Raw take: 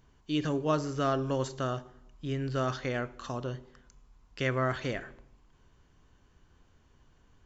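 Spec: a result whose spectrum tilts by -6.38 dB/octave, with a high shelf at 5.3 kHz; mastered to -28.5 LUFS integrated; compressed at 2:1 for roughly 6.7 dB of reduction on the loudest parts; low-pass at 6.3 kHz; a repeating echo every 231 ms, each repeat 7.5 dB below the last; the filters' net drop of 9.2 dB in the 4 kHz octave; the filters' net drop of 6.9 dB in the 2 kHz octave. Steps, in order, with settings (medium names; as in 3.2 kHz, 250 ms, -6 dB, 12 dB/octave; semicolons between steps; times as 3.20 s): low-pass 6.3 kHz; peaking EQ 2 kHz -6.5 dB; peaking EQ 4 kHz -6 dB; treble shelf 5.3 kHz -9 dB; compression 2:1, threshold -36 dBFS; feedback delay 231 ms, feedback 42%, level -7.5 dB; trim +9 dB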